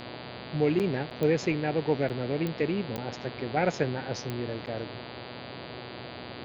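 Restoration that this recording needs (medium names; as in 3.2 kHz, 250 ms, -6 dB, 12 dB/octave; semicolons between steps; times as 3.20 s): de-click; de-hum 122.8 Hz, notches 39; interpolate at 0.79/1.10/2.09/2.97/4.66 s, 8.1 ms; noise print and reduce 30 dB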